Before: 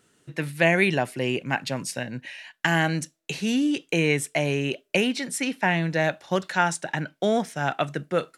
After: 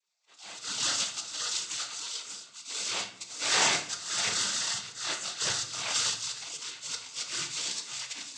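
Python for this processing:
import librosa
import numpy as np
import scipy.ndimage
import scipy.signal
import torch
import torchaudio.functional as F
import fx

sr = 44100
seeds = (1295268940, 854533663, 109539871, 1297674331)

p1 = fx.spec_dilate(x, sr, span_ms=60)
p2 = p1 + fx.echo_feedback(p1, sr, ms=592, feedback_pct=23, wet_db=-5.5, dry=0)
p3 = fx.dynamic_eq(p2, sr, hz=190.0, q=1.7, threshold_db=-34.0, ratio=4.0, max_db=4)
p4 = fx.sample_hold(p3, sr, seeds[0], rate_hz=1500.0, jitter_pct=20)
p5 = p3 + F.gain(torch.from_numpy(p4), -3.0).numpy()
p6 = fx.auto_swell(p5, sr, attack_ms=306.0)
p7 = fx.low_shelf(p6, sr, hz=480.0, db=-10.5)
p8 = fx.spec_gate(p7, sr, threshold_db=-25, keep='weak')
p9 = fx.noise_vocoder(p8, sr, seeds[1], bands=16)
p10 = fx.room_shoebox(p9, sr, seeds[2], volume_m3=120.0, walls='mixed', distance_m=0.53)
y = F.gain(torch.from_numpy(p10), 8.5).numpy()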